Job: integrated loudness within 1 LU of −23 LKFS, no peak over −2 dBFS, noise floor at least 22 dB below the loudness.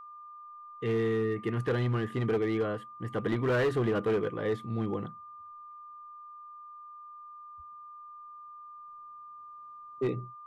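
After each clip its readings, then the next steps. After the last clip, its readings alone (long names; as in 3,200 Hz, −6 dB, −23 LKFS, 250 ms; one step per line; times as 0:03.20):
share of clipped samples 1.6%; peaks flattened at −23.0 dBFS; interfering tone 1,200 Hz; level of the tone −45 dBFS; integrated loudness −31.0 LKFS; sample peak −23.0 dBFS; target loudness −23.0 LKFS
→ clipped peaks rebuilt −23 dBFS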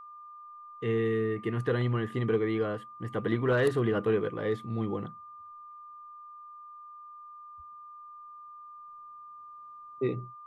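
share of clipped samples 0.0%; interfering tone 1,200 Hz; level of the tone −45 dBFS
→ notch filter 1,200 Hz, Q 30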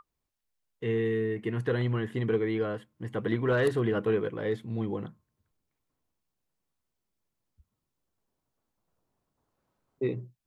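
interfering tone none found; integrated loudness −30.0 LKFS; sample peak −14.5 dBFS; target loudness −23.0 LKFS
→ level +7 dB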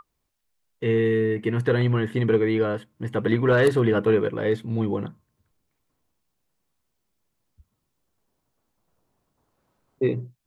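integrated loudness −23.0 LKFS; sample peak −7.5 dBFS; background noise floor −77 dBFS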